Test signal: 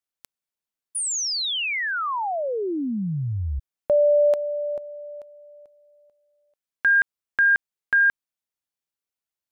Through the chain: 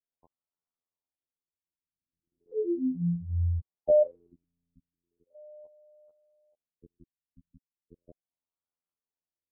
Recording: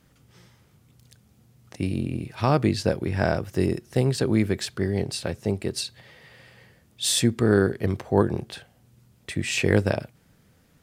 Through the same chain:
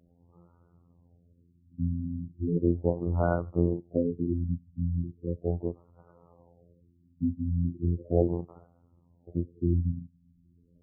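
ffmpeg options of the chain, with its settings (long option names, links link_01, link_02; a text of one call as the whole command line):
ffmpeg -i in.wav -af "afftfilt=real='hypot(re,im)*cos(PI*b)':imag='0':win_size=2048:overlap=0.75,afftfilt=real='re*lt(b*sr/1024,260*pow(1500/260,0.5+0.5*sin(2*PI*0.37*pts/sr)))':imag='im*lt(b*sr/1024,260*pow(1500/260,0.5+0.5*sin(2*PI*0.37*pts/sr)))':win_size=1024:overlap=0.75,volume=1dB" out.wav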